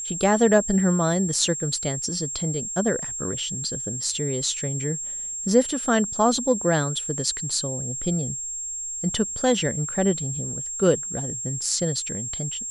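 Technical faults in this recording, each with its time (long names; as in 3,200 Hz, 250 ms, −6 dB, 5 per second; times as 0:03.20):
whistle 7,500 Hz −29 dBFS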